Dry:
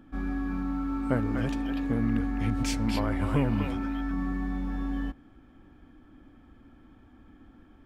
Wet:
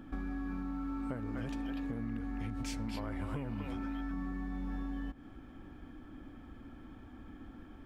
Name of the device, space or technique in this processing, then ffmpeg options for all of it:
serial compression, peaks first: -af "acompressor=threshold=-35dB:ratio=6,acompressor=threshold=-41dB:ratio=2,volume=3.5dB"

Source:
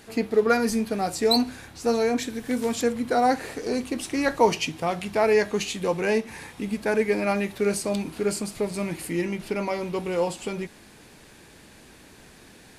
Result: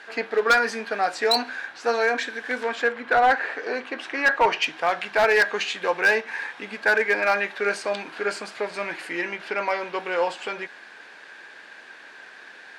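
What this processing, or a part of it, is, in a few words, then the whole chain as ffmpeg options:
megaphone: -filter_complex "[0:a]highpass=650,lowpass=3600,equalizer=frequency=1600:width_type=o:width=0.31:gain=11,asoftclip=type=hard:threshold=-19dB,asettb=1/sr,asplit=3[link_01][link_02][link_03];[link_01]atrim=end=2.634[link_04];[link_02]atrim=start=2.63:end=4.62,asetpts=PTS-STARTPTS,afade=type=in:duration=0.004:curve=qsin,afade=type=out:start_time=1.986:duration=0.004:curve=qsin,bass=frequency=250:gain=-1,treble=frequency=4000:gain=-9[link_05];[link_03]atrim=start=4.616[link_06];[link_04][link_05]acrossfade=duration=0.004:curve1=hsin:curve2=qsin[link_07];[link_07][link_06]acrossfade=duration=0.004:curve1=qsin:curve2=hsin,volume=6dB"

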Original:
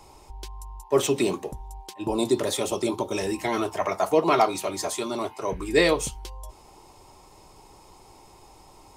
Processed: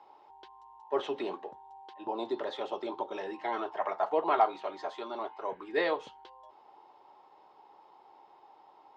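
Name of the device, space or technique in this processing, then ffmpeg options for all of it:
phone earpiece: -filter_complex "[0:a]highpass=410,equalizer=frequency=830:width_type=q:width=4:gain=7,equalizer=frequency=1600:width_type=q:width=4:gain=4,equalizer=frequency=2400:width_type=q:width=4:gain=-8,lowpass=frequency=3400:width=0.5412,lowpass=frequency=3400:width=1.3066,asettb=1/sr,asplit=3[link_01][link_02][link_03];[link_01]atrim=end=4.094[link_04];[link_02]atrim=start=4.09:end=4.59,asetpts=PTS-STARTPTS,afade=type=in:duration=0.004:curve=qsin,afade=type=out:start_time=0.496:duration=0.004:curve=qsin,equalizer=frequency=5400:width_type=o:width=0.38:gain=-5.5[link_05];[link_03]atrim=start=4.586[link_06];[link_04][link_05]acrossfade=duration=0.004:curve1=hsin:curve2=qsin[link_07];[link_07][link_06]acrossfade=duration=0.004:curve1=qsin:curve2=hsin,volume=-7.5dB"

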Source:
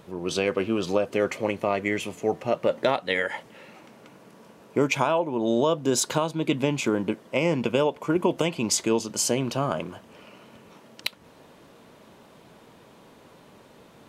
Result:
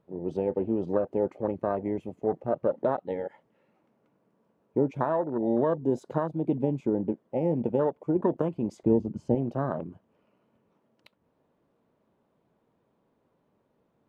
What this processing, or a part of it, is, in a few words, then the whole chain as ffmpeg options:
through cloth: -filter_complex "[0:a]highshelf=frequency=2000:gain=-16.5,afwtdn=0.0355,asettb=1/sr,asplit=3[link_01][link_02][link_03];[link_01]atrim=end=8.834[link_04];[link_02]atrim=start=8.83:end=9.35,asetpts=PTS-STARTPTS,afade=type=in:duration=0.004:curve=qsin,afade=type=out:start_time=0.516:duration=0.004:curve=qsin,aemphasis=mode=reproduction:type=bsi[link_05];[link_03]atrim=start=9.346[link_06];[link_04][link_05]acrossfade=duration=0.004:curve1=hsin:curve2=qsin[link_07];[link_07][link_06]acrossfade=duration=0.004:curve1=qsin:curve2=hsin,volume=-1.5dB"

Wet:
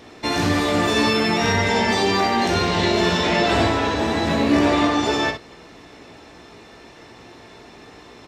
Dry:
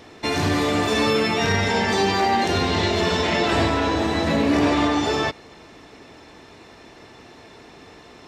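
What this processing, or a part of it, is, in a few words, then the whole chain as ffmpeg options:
slapback doubling: -filter_complex "[0:a]asplit=3[link_01][link_02][link_03];[link_02]adelay=17,volume=-6.5dB[link_04];[link_03]adelay=63,volume=-7dB[link_05];[link_01][link_04][link_05]amix=inputs=3:normalize=0"

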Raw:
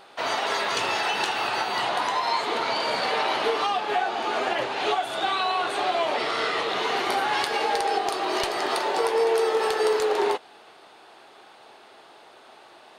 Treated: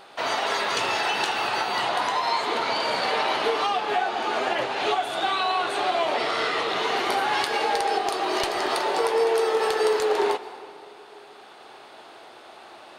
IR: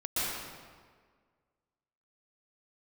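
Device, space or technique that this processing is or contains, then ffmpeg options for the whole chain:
ducked reverb: -filter_complex "[0:a]asplit=3[link_01][link_02][link_03];[1:a]atrim=start_sample=2205[link_04];[link_02][link_04]afir=irnorm=-1:irlink=0[link_05];[link_03]apad=whole_len=572832[link_06];[link_05][link_06]sidechaincompress=threshold=-35dB:ratio=5:attack=16:release=1280,volume=-8dB[link_07];[link_01][link_07]amix=inputs=2:normalize=0"

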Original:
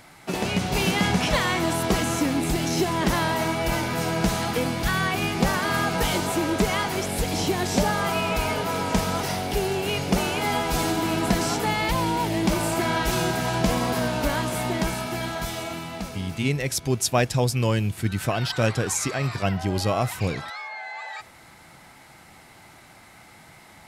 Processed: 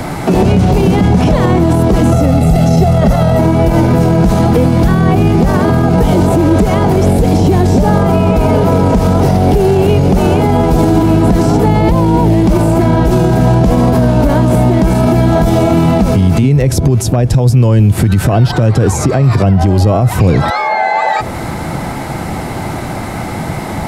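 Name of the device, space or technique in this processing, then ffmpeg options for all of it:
mastering chain: -filter_complex "[0:a]asettb=1/sr,asplit=3[link_01][link_02][link_03];[link_01]atrim=end=2.124[link_04];[link_02]atrim=start=2.12:end=3.39,asetpts=PTS-STARTPTS,afade=type=in:duration=0.004:curve=qsin,afade=type=out:start_time=1.266:duration=0.004:curve=qsin,aecho=1:1:1.5:0.87,atrim=end_sample=56007[link_05];[link_03]atrim=start=3.386[link_06];[link_04][link_05]acrossfade=duration=0.004:curve1=hsin:curve2=qsin[link_07];[link_07][link_06]acrossfade=duration=0.004:curve1=qsin:curve2=hsin,equalizer=frequency=2200:width_type=o:width=2:gain=-3,acrossover=split=110|800[link_08][link_09][link_10];[link_08]acompressor=threshold=-36dB:ratio=4[link_11];[link_09]acompressor=threshold=-34dB:ratio=4[link_12];[link_10]acompressor=threshold=-42dB:ratio=4[link_13];[link_11][link_12][link_13]amix=inputs=3:normalize=0,acompressor=threshold=-35dB:ratio=2,tiltshelf=frequency=1100:gain=7,asoftclip=type=hard:threshold=-20.5dB,alimiter=level_in=29dB:limit=-1dB:release=50:level=0:latency=1,volume=-1dB"

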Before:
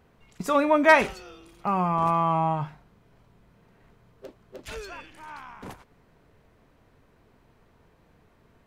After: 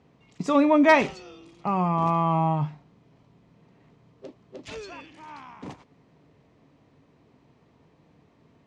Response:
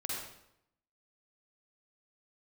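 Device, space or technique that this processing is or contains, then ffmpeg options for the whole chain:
car door speaker: -af "highpass=87,equalizer=frequency=150:width_type=q:width=4:gain=6,equalizer=frequency=280:width_type=q:width=4:gain=7,equalizer=frequency=1500:width_type=q:width=4:gain=-8,lowpass=frequency=7100:width=0.5412,lowpass=frequency=7100:width=1.3066"

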